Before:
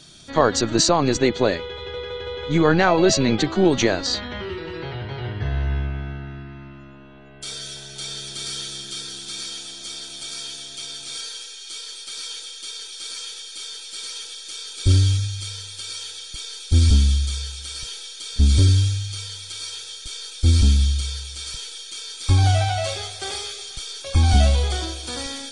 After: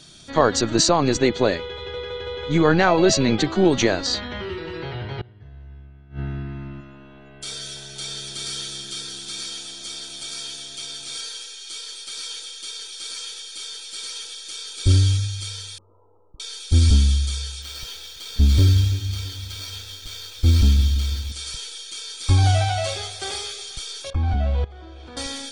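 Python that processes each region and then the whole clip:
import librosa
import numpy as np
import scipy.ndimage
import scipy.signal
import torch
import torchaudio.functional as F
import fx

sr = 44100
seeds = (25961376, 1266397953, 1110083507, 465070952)

y = fx.chain(x, sr, fx.low_shelf(hz=440.0, db=7.0),
    fx.gate_flip(shuts_db=-17.0, range_db=-25), at=(5.19, 6.81))
y = fx.chain(y, sr, fx.cheby1_lowpass(hz=1200.0, order=8),
    fx.level_steps(step_db=14), at=(15.78, 16.4))
y = fx.chain(y, sr, fx.median_filter(points=5),
    fx.echo_bbd(ms=333, stages=1024, feedback_pct=45, wet_db=-14.5), at=(17.62, 21.32))
y = fx.chain(y, sr, fx.lowpass(hz=1800.0, slope=12),
    fx.level_steps(step_db=20), at=(24.1, 25.17))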